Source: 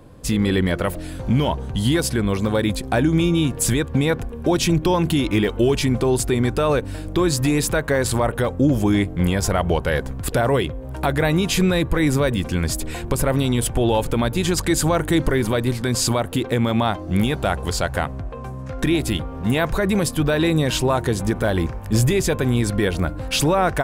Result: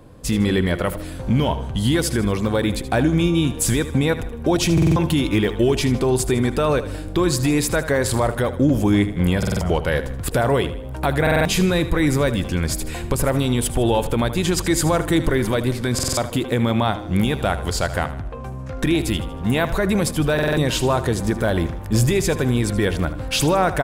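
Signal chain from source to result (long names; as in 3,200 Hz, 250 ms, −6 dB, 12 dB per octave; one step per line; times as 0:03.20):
repeating echo 78 ms, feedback 45%, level −13.5 dB
buffer that repeats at 0:04.73/0:09.38/0:11.22/0:15.94/0:20.34, samples 2,048, times 4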